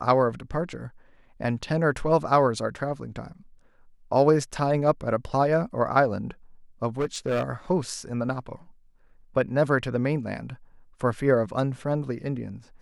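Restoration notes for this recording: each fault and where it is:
0:06.99–0:07.43: clipping −21 dBFS

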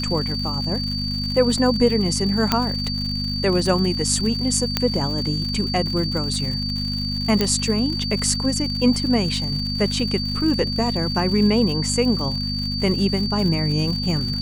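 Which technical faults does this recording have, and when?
surface crackle 130 per second −28 dBFS
mains hum 50 Hz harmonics 5 −27 dBFS
whistle 4,600 Hz −26 dBFS
0:02.52: click −2 dBFS
0:04.77: click −3 dBFS
0:07.41: click −5 dBFS

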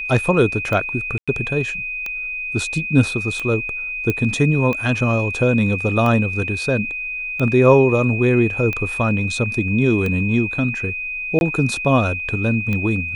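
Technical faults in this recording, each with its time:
scratch tick 45 rpm −12 dBFS
whistle 2,500 Hz −24 dBFS
0:01.18–0:01.28: drop-out 96 ms
0:04.10: click −8 dBFS
0:11.39–0:11.41: drop-out 21 ms

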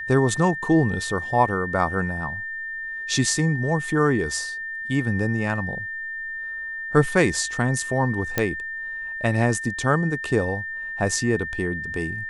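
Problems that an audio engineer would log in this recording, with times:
whistle 1,800 Hz −29 dBFS
0:08.38: click −6 dBFS

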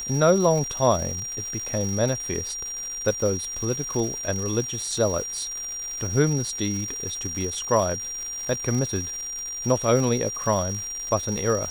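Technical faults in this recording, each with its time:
surface crackle 410 per second −31 dBFS
whistle 5,700 Hz −30 dBFS

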